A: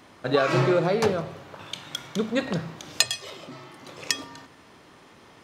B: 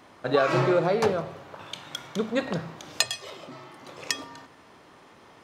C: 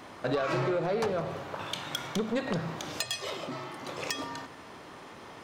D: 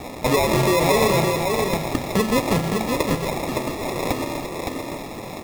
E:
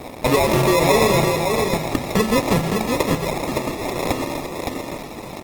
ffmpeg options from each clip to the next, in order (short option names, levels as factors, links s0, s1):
-af "equalizer=f=810:t=o:w=2.3:g=4.5,volume=0.668"
-filter_complex "[0:a]asplit=2[s0][s1];[s1]alimiter=limit=0.158:level=0:latency=1:release=96,volume=0.891[s2];[s0][s2]amix=inputs=2:normalize=0,acompressor=threshold=0.0631:ratio=6,asoftclip=type=tanh:threshold=0.0794"
-filter_complex "[0:a]asplit=2[s0][s1];[s1]acompressor=mode=upward:threshold=0.02:ratio=2.5,volume=0.75[s2];[s0][s2]amix=inputs=2:normalize=0,acrusher=samples=29:mix=1:aa=0.000001,aecho=1:1:565:0.596,volume=1.88"
-af "aeval=exprs='sgn(val(0))*max(abs(val(0))-0.0075,0)':c=same,volume=1.33" -ar 48000 -c:a libopus -b:a 20k